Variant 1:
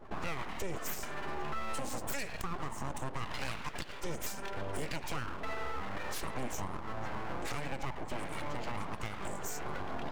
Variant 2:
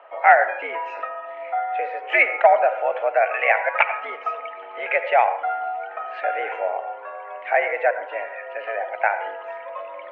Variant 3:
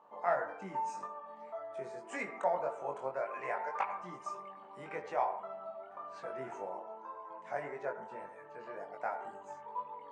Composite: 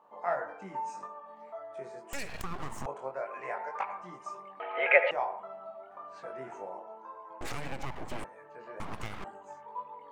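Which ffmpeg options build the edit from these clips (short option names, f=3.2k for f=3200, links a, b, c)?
-filter_complex "[0:a]asplit=3[a][b][c];[2:a]asplit=5[d][e][f][g][h];[d]atrim=end=2.132[i];[a]atrim=start=2.128:end=2.862[j];[e]atrim=start=2.858:end=4.602[k];[1:a]atrim=start=4.598:end=5.112[l];[f]atrim=start=5.108:end=7.412[m];[b]atrim=start=7.408:end=8.242[n];[g]atrim=start=8.238:end=8.802[o];[c]atrim=start=8.798:end=9.242[p];[h]atrim=start=9.238[q];[i][j]acrossfade=d=0.004:c1=hsin:c2=hsin[r];[r][k]acrossfade=d=0.004:c1=hsin:c2=hsin[s];[s][l]acrossfade=d=0.004:c1=hsin:c2=hsin[t];[t][m]acrossfade=d=0.004:c1=hsin:c2=hsin[u];[u][n]acrossfade=d=0.004:c1=hsin:c2=hsin[v];[v][o]acrossfade=d=0.004:c1=hsin:c2=hsin[w];[w][p]acrossfade=d=0.004:c1=hsin:c2=hsin[x];[x][q]acrossfade=d=0.004:c1=hsin:c2=hsin"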